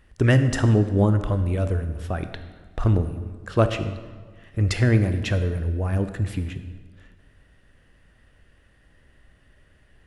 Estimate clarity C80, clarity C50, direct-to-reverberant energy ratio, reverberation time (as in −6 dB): 11.5 dB, 10.5 dB, 9.0 dB, 1.5 s